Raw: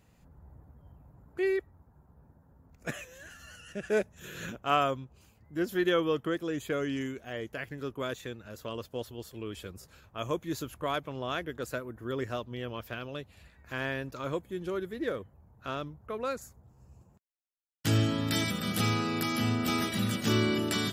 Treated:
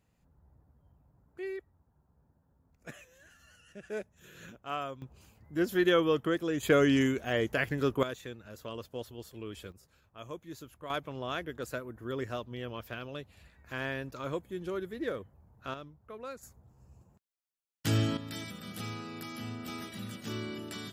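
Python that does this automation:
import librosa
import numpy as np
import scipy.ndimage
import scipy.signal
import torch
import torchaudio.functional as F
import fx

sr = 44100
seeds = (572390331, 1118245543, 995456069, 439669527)

y = fx.gain(x, sr, db=fx.steps((0.0, -10.0), (5.02, 1.5), (6.63, 8.0), (8.03, -3.0), (9.72, -10.5), (10.9, -2.0), (15.74, -9.0), (16.43, -2.0), (18.17, -11.5)))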